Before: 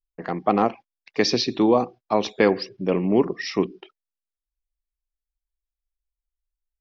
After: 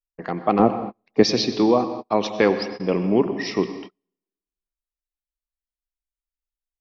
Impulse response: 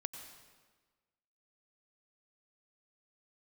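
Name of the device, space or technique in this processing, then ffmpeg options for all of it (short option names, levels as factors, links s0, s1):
keyed gated reverb: -filter_complex "[0:a]asettb=1/sr,asplit=3[s0][s1][s2];[s0]atrim=end=0.594[s3];[s1]atrim=start=0.59:end=1.23,asetpts=PTS-STARTPTS,afade=t=in:d=0.004:c=qsin,afade=t=out:st=0.636:d=0.004:c=qsin,tiltshelf=f=970:g=8.5[s4];[s2]atrim=start=1.226[s5];[s3][s4]acrossfade=d=0.004:c1=hsin:c2=qsin[s6];[s6][s5]acrossfade=d=0.004:c1=qsin:c2=hsin,asplit=3[s7][s8][s9];[1:a]atrim=start_sample=2205[s10];[s8][s10]afir=irnorm=-1:irlink=0[s11];[s9]apad=whole_len=300034[s12];[s11][s12]sidechaingate=range=0.0112:threshold=0.00794:ratio=16:detection=peak,volume=2.51[s13];[s7][s13]amix=inputs=2:normalize=0,volume=0.355"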